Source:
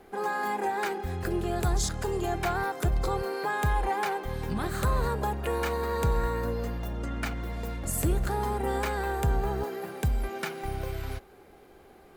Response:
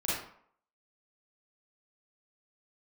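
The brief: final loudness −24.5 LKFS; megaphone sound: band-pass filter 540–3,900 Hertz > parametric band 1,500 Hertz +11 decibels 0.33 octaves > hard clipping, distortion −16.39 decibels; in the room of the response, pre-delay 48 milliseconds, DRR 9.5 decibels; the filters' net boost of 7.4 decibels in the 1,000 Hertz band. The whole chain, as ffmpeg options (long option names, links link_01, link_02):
-filter_complex "[0:a]equalizer=frequency=1000:width_type=o:gain=9,asplit=2[link_01][link_02];[1:a]atrim=start_sample=2205,adelay=48[link_03];[link_02][link_03]afir=irnorm=-1:irlink=0,volume=-16.5dB[link_04];[link_01][link_04]amix=inputs=2:normalize=0,highpass=540,lowpass=3900,equalizer=frequency=1500:width_type=o:width=0.33:gain=11,asoftclip=type=hard:threshold=-19dB,volume=2.5dB"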